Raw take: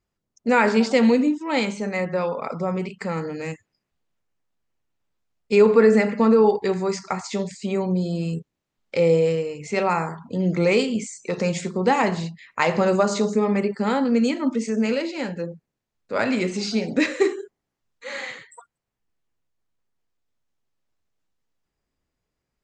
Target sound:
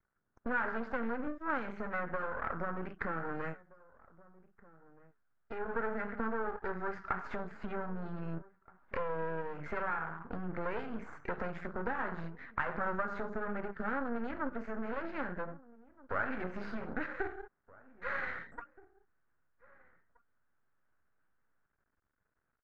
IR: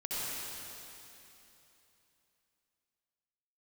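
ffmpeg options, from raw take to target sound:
-filter_complex "[0:a]acompressor=threshold=-32dB:ratio=5,asplit=3[link_01][link_02][link_03];[link_01]afade=type=out:start_time=3.52:duration=0.02[link_04];[link_02]flanger=delay=7.2:depth=5.2:regen=67:speed=1.5:shape=sinusoidal,afade=type=in:start_time=3.52:duration=0.02,afade=type=out:start_time=5.66:duration=0.02[link_05];[link_03]afade=type=in:start_time=5.66:duration=0.02[link_06];[link_04][link_05][link_06]amix=inputs=3:normalize=0,aeval=exprs='max(val(0),0)':channel_layout=same,lowpass=frequency=1500:width_type=q:width=4.8,asplit=2[link_07][link_08];[link_08]adelay=1574,volume=-21dB,highshelf=frequency=4000:gain=-35.4[link_09];[link_07][link_09]amix=inputs=2:normalize=0,volume=-1dB"

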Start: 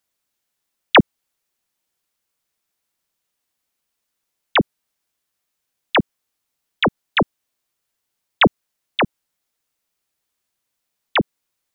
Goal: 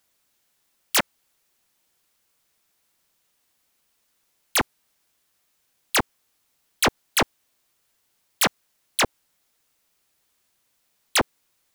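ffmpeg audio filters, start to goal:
ffmpeg -i in.wav -af "aeval=exprs='0.0891*(abs(mod(val(0)/0.0891+3,4)-2)-1)':channel_layout=same,volume=7.5dB" out.wav

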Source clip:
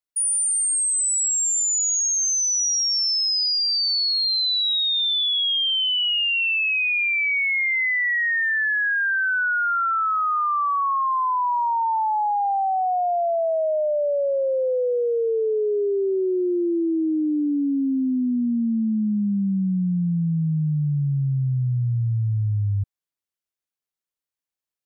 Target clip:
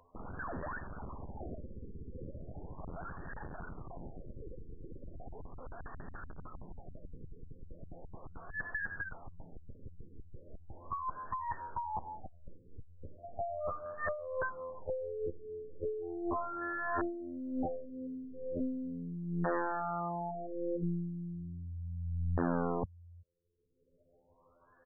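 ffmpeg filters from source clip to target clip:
ffmpeg -i in.wav -filter_complex "[0:a]aecho=1:1:1.9:0.79,acompressor=mode=upward:threshold=-21dB:ratio=2.5,alimiter=level_in=3.5dB:limit=-24dB:level=0:latency=1,volume=-3.5dB,afftfilt=real='hypot(re,im)*cos(PI*b)':imag='0':win_size=2048:overlap=0.75,asplit=2[link_01][link_02];[link_02]adelay=379,volume=-26dB,highshelf=frequency=4000:gain=-8.53[link_03];[link_01][link_03]amix=inputs=2:normalize=0,aeval=exprs='0.112*(cos(1*acos(clip(val(0)/0.112,-1,1)))-cos(1*PI/2))+0.0158*(cos(4*acos(clip(val(0)/0.112,-1,1)))-cos(4*PI/2))+0.00251*(cos(5*acos(clip(val(0)/0.112,-1,1)))-cos(5*PI/2))+0.0126*(cos(8*acos(clip(val(0)/0.112,-1,1)))-cos(8*PI/2))':channel_layout=same,aeval=exprs='(mod(29.9*val(0)+1,2)-1)/29.9':channel_layout=same,afftfilt=real='re*lt(b*sr/1024,500*pow(1900/500,0.5+0.5*sin(2*PI*0.37*pts/sr)))':imag='im*lt(b*sr/1024,500*pow(1900/500,0.5+0.5*sin(2*PI*0.37*pts/sr)))':win_size=1024:overlap=0.75,volume=4.5dB" out.wav

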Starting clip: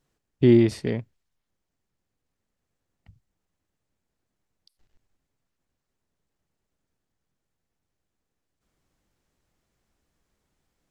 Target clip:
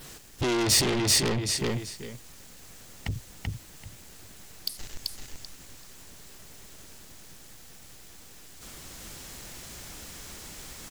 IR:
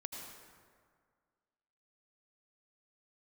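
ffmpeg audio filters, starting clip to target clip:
-filter_complex "[0:a]apsyclip=24.5dB,asplit=2[link_01][link_02];[link_02]aecho=0:1:386|772|1158:0.708|0.106|0.0159[link_03];[link_01][link_03]amix=inputs=2:normalize=0,acompressor=threshold=-18dB:ratio=16,adynamicequalizer=threshold=0.002:dfrequency=6700:dqfactor=2.4:tfrequency=6700:tqfactor=2.4:attack=5:release=100:ratio=0.375:range=2:mode=boostabove:tftype=bell,asoftclip=type=tanh:threshold=-27dB,highshelf=frequency=2300:gain=11.5,volume=2dB"

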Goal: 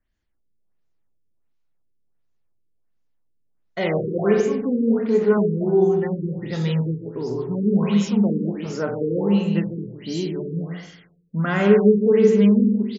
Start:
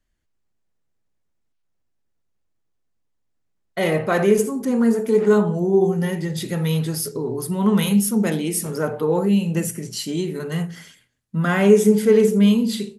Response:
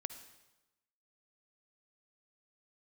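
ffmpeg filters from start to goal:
-filter_complex "[0:a]aecho=1:1:151.6|236.2:0.447|0.251,asplit=2[link_01][link_02];[1:a]atrim=start_sample=2205,adelay=49[link_03];[link_02][link_03]afir=irnorm=-1:irlink=0,volume=-6.5dB[link_04];[link_01][link_04]amix=inputs=2:normalize=0,afftfilt=real='re*lt(b*sr/1024,470*pow(7600/470,0.5+0.5*sin(2*PI*1.4*pts/sr)))':imag='im*lt(b*sr/1024,470*pow(7600/470,0.5+0.5*sin(2*PI*1.4*pts/sr)))':win_size=1024:overlap=0.75,volume=-2.5dB"

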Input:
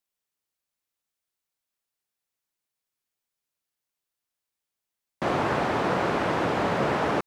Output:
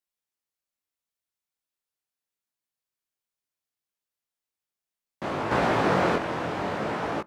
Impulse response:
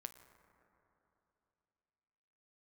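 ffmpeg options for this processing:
-filter_complex "[0:a]asettb=1/sr,asplit=3[link_01][link_02][link_03];[link_01]atrim=end=5.514[link_04];[link_02]atrim=start=5.51:end=6.16,asetpts=PTS-STARTPTS,afade=type=in:duration=0.004:curve=qsin,afade=type=out:start_time=0.646:duration=0.004:curve=qsin,acontrast=83[link_05];[link_03]atrim=start=6.156[link_06];[link_04][link_05]acrossfade=duration=0.004:curve1=hsin:curve2=qsin[link_07];[link_07][link_06]acrossfade=duration=0.004:curve1=qsin:curve2=hsin,flanger=delay=17.5:depth=7:speed=0.71,asplit=2[link_08][link_09];[1:a]atrim=start_sample=2205[link_10];[link_09][link_10]afir=irnorm=-1:irlink=0,volume=-9.5dB[link_11];[link_08][link_11]amix=inputs=2:normalize=0,volume=-3dB"

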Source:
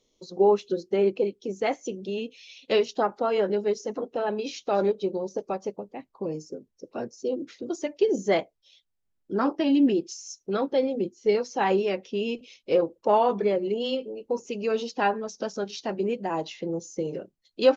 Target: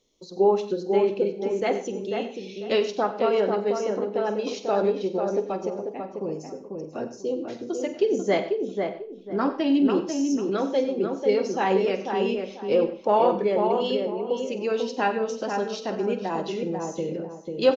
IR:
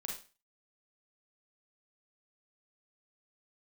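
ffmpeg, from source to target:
-filter_complex "[0:a]asplit=2[link_01][link_02];[link_02]adelay=493,lowpass=frequency=1600:poles=1,volume=-4dB,asplit=2[link_03][link_04];[link_04]adelay=493,lowpass=frequency=1600:poles=1,volume=0.27,asplit=2[link_05][link_06];[link_06]adelay=493,lowpass=frequency=1600:poles=1,volume=0.27,asplit=2[link_07][link_08];[link_08]adelay=493,lowpass=frequency=1600:poles=1,volume=0.27[link_09];[link_01][link_03][link_05][link_07][link_09]amix=inputs=5:normalize=0,asplit=2[link_10][link_11];[1:a]atrim=start_sample=2205,adelay=47[link_12];[link_11][link_12]afir=irnorm=-1:irlink=0,volume=-9dB[link_13];[link_10][link_13]amix=inputs=2:normalize=0"

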